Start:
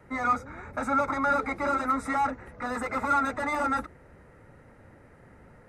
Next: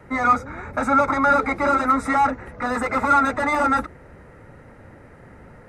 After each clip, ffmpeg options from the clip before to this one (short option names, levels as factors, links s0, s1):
-af "highshelf=f=8300:g=-4.5,volume=2.51"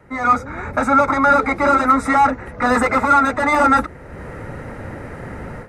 -af "dynaudnorm=f=170:g=3:m=6.68,volume=0.75"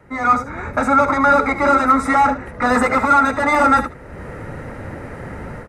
-af "aecho=1:1:64|76:0.15|0.188"